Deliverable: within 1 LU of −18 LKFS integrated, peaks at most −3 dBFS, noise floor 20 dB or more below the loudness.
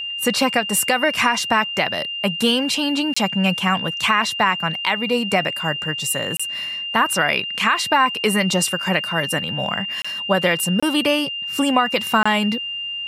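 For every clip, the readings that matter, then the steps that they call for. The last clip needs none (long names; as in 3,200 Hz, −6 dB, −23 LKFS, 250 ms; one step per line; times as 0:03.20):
number of dropouts 5; longest dropout 25 ms; interfering tone 2,800 Hz; level of the tone −25 dBFS; integrated loudness −19.5 LKFS; sample peak −4.5 dBFS; target loudness −18.0 LKFS
→ repair the gap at 0:03.14/0:06.37/0:10.02/0:10.80/0:12.23, 25 ms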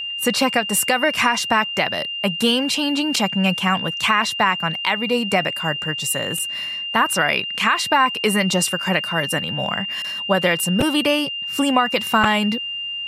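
number of dropouts 0; interfering tone 2,800 Hz; level of the tone −25 dBFS
→ notch filter 2,800 Hz, Q 30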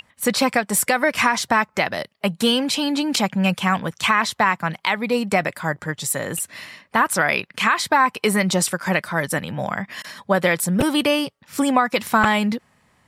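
interfering tone none found; integrated loudness −20.5 LKFS; sample peak −2.5 dBFS; target loudness −18.0 LKFS
→ level +2.5 dB
brickwall limiter −3 dBFS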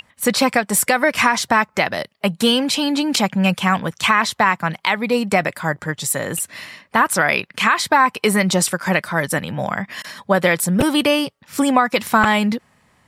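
integrated loudness −18.0 LKFS; sample peak −3.0 dBFS; background noise floor −60 dBFS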